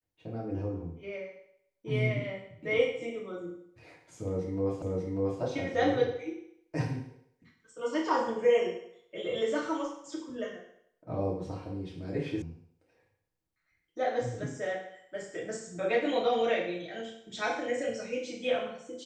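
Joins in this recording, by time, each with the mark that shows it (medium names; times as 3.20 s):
4.82 s: repeat of the last 0.59 s
12.42 s: sound stops dead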